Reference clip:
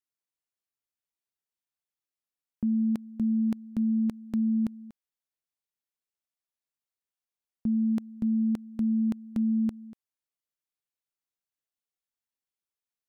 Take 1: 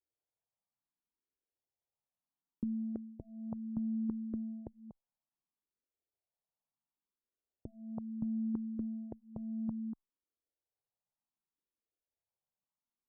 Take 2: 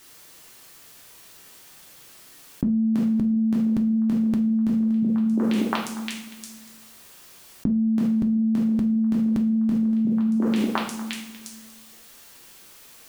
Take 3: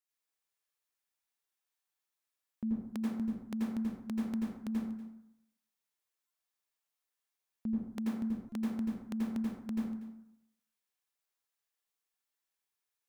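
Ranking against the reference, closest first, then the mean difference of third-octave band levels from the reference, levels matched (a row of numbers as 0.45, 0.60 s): 1, 2, 3; 2.5, 6.5, 12.5 dB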